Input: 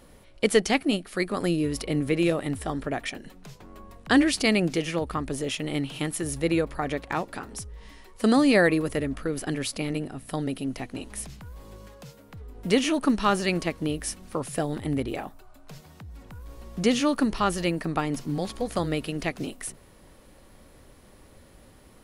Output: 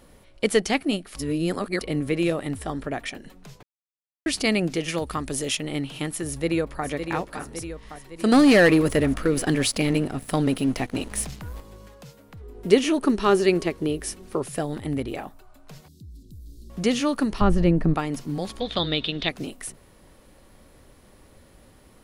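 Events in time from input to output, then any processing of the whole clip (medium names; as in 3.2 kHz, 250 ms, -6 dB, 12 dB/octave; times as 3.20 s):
1.15–1.81 s: reverse
3.63–4.26 s: mute
4.88–5.57 s: treble shelf 3.1 kHz +9.5 dB
6.27–6.86 s: echo throw 560 ms, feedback 60%, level -7.5 dB
8.32–11.61 s: waveshaping leveller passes 2
12.43–14.48 s: peaking EQ 390 Hz +12.5 dB 0.33 oct
15.88–16.70 s: elliptic band-stop 350–4000 Hz
17.41–17.94 s: tilt EQ -4 dB/octave
18.60–19.29 s: resonant low-pass 3.6 kHz, resonance Q 16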